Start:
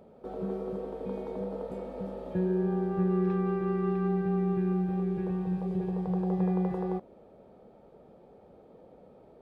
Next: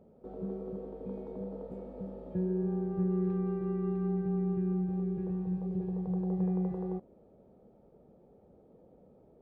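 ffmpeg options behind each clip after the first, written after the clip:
ffmpeg -i in.wav -af "tiltshelf=frequency=700:gain=7,volume=-8.5dB" out.wav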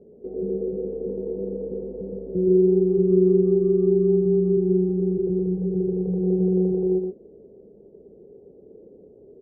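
ffmpeg -i in.wav -af "lowpass=frequency=410:width_type=q:width=4.9,aecho=1:1:119:0.668,volume=2.5dB" out.wav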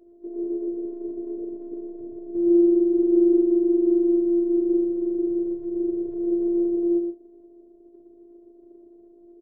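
ffmpeg -i in.wav -filter_complex "[0:a]afftfilt=real='hypot(re,im)*cos(PI*b)':imag='0':win_size=512:overlap=0.75,asplit=2[link_01][link_02];[link_02]adelay=38,volume=-13dB[link_03];[link_01][link_03]amix=inputs=2:normalize=0" out.wav

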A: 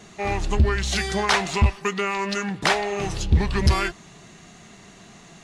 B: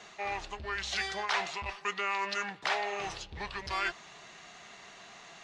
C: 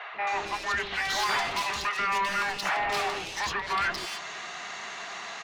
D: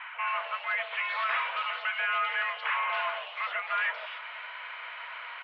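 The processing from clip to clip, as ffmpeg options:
ffmpeg -i in.wav -filter_complex "[0:a]areverse,acompressor=threshold=-27dB:ratio=6,areverse,acrossover=split=520 6200:gain=0.141 1 0.126[link_01][link_02][link_03];[link_01][link_02][link_03]amix=inputs=3:normalize=0" out.wav
ffmpeg -i in.wav -filter_complex "[0:a]asplit=2[link_01][link_02];[link_02]highpass=frequency=720:poles=1,volume=23dB,asoftclip=type=tanh:threshold=-18.5dB[link_03];[link_01][link_03]amix=inputs=2:normalize=0,lowpass=frequency=3700:poles=1,volume=-6dB,acrossover=split=540|2900[link_04][link_05][link_06];[link_04]adelay=140[link_07];[link_06]adelay=270[link_08];[link_07][link_05][link_08]amix=inputs=3:normalize=0" out.wav
ffmpeg -i in.wav -af "highpass=frequency=250:width_type=q:width=0.5412,highpass=frequency=250:width_type=q:width=1.307,lowpass=frequency=2800:width_type=q:width=0.5176,lowpass=frequency=2800:width_type=q:width=0.7071,lowpass=frequency=2800:width_type=q:width=1.932,afreqshift=270,volume=-1.5dB" out.wav

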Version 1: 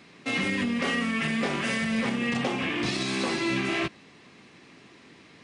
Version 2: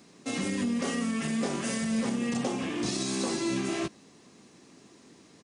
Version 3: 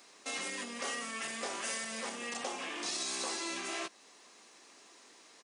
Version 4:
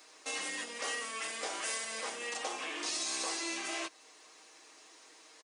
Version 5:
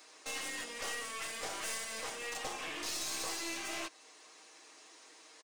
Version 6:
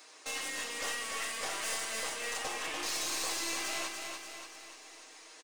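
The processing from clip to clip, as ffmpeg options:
ffmpeg -i in.wav -af "firequalizer=gain_entry='entry(130,0);entry(210,4);entry(2200,-7);entry(6400,10)':delay=0.05:min_phase=1,volume=-4.5dB" out.wav
ffmpeg -i in.wav -filter_complex "[0:a]highpass=690,asplit=2[link_01][link_02];[link_02]acompressor=threshold=-45dB:ratio=6,volume=-1dB[link_03];[link_01][link_03]amix=inputs=2:normalize=0,volume=-3.5dB" out.wav
ffmpeg -i in.wav -af "highpass=300,aecho=1:1:6.4:0.54" out.wav
ffmpeg -i in.wav -af "aeval=exprs='clip(val(0),-1,0.0075)':channel_layout=same" out.wav
ffmpeg -i in.wav -filter_complex "[0:a]lowshelf=frequency=300:gain=-4.5,asplit=2[link_01][link_02];[link_02]aecho=0:1:292|584|876|1168|1460|1752|2044:0.562|0.298|0.158|0.0837|0.0444|0.0235|0.0125[link_03];[link_01][link_03]amix=inputs=2:normalize=0,volume=2.5dB" out.wav

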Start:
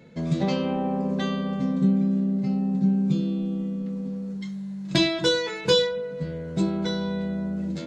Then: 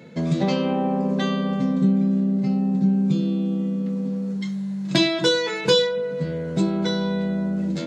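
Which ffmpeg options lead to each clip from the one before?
ffmpeg -i in.wav -filter_complex "[0:a]highpass=120,asplit=2[link_01][link_02];[link_02]acompressor=threshold=-29dB:ratio=6,volume=1dB[link_03];[link_01][link_03]amix=inputs=2:normalize=0" out.wav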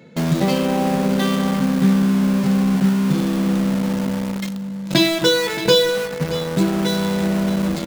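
ffmpeg -i in.wav -filter_complex "[0:a]asplit=2[link_01][link_02];[link_02]acrusher=bits=3:mix=0:aa=0.000001,volume=-4dB[link_03];[link_01][link_03]amix=inputs=2:normalize=0,aecho=1:1:623:0.2,volume=-1dB" out.wav

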